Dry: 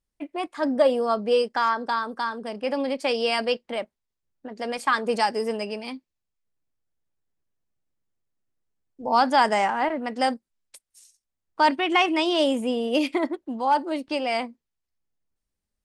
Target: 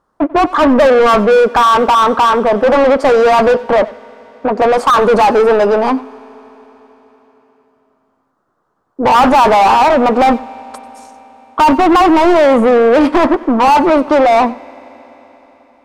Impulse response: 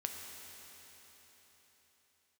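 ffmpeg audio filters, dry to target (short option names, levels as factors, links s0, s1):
-filter_complex "[0:a]highshelf=f=1700:t=q:w=3:g=-11,asplit=2[s0][s1];[s1]highpass=f=720:p=1,volume=56.2,asoftclip=type=tanh:threshold=0.596[s2];[s0][s2]amix=inputs=2:normalize=0,lowpass=f=1500:p=1,volume=0.501,asplit=2[s3][s4];[1:a]atrim=start_sample=2205,adelay=93[s5];[s4][s5]afir=irnorm=-1:irlink=0,volume=0.133[s6];[s3][s6]amix=inputs=2:normalize=0,volume=1.5"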